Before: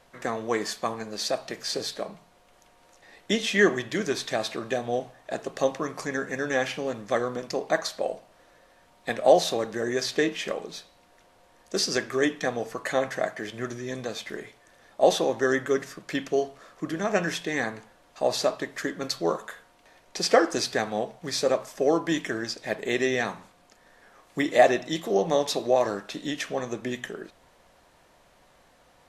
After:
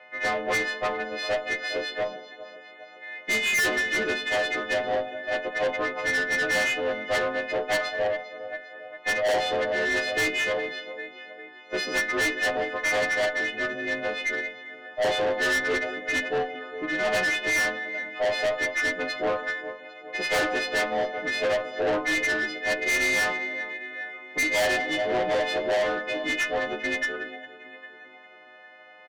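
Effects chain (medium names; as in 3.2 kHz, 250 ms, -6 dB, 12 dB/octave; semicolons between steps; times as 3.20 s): partials quantised in pitch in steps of 3 st; cabinet simulation 370–2500 Hz, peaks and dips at 390 Hz -5 dB, 650 Hz +4 dB, 960 Hz -10 dB, 1.4 kHz -4 dB, 2 kHz +9 dB; feedback delay 402 ms, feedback 53%, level -18 dB; plate-style reverb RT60 2.3 s, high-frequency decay 0.75×, pre-delay 120 ms, DRR 19.5 dB; valve stage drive 29 dB, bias 0.2; trim +7.5 dB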